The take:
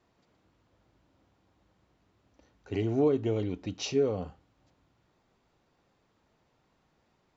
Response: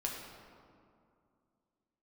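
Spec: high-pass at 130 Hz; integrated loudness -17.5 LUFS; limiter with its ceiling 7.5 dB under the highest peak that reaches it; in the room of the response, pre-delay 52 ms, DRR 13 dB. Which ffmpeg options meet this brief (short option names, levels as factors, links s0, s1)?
-filter_complex "[0:a]highpass=130,alimiter=limit=0.0631:level=0:latency=1,asplit=2[s0][s1];[1:a]atrim=start_sample=2205,adelay=52[s2];[s1][s2]afir=irnorm=-1:irlink=0,volume=0.178[s3];[s0][s3]amix=inputs=2:normalize=0,volume=6.68"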